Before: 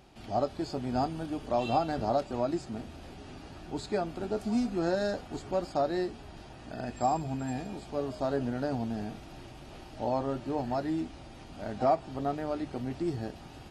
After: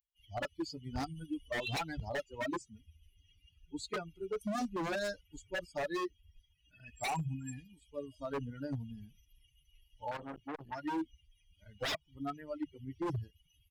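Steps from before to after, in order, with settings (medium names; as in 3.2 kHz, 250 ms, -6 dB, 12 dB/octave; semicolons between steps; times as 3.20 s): expander on every frequency bin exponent 3; wavefolder -35 dBFS; 10.11–10.84 s: transformer saturation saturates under 930 Hz; trim +5 dB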